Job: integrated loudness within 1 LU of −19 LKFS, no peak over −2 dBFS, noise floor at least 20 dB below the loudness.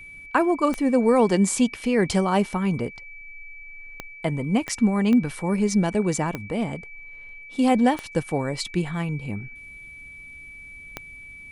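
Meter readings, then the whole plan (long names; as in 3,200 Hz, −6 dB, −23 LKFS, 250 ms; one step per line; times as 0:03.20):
number of clicks 7; interfering tone 2,300 Hz; level of the tone −40 dBFS; integrated loudness −23.0 LKFS; sample peak −7.0 dBFS; target loudness −19.0 LKFS
→ click removal
notch filter 2,300 Hz, Q 30
level +4 dB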